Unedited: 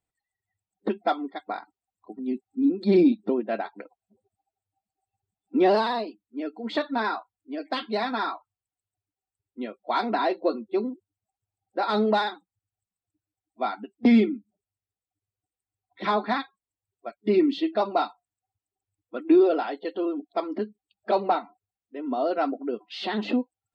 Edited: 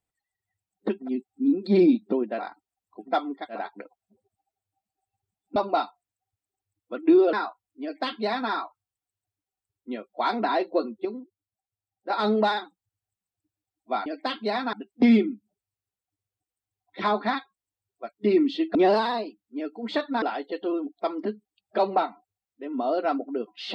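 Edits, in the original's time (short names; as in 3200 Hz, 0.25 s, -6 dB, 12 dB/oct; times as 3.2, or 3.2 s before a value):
1.01–1.5 swap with 2.18–3.56, crossfade 0.16 s
5.56–7.03 swap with 17.78–19.55
7.53–8.2 copy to 13.76
10.75–11.8 gain -7 dB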